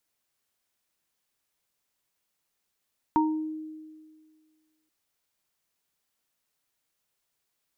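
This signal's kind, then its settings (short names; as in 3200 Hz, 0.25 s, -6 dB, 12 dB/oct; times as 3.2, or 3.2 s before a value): sine partials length 1.73 s, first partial 312 Hz, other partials 928 Hz, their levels 2.5 dB, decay 1.83 s, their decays 0.36 s, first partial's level -20.5 dB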